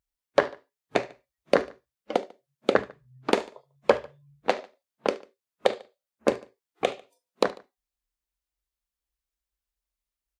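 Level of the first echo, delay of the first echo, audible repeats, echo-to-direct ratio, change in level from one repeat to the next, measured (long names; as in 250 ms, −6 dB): −21.0 dB, 73 ms, 2, −20.0 dB, −5.0 dB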